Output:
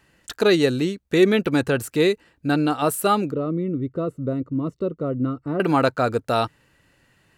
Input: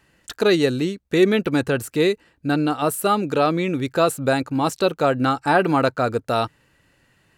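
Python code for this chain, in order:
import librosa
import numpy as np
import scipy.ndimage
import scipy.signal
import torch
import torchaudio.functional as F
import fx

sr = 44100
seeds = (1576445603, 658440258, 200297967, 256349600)

y = fx.moving_average(x, sr, points=54, at=(3.31, 5.6))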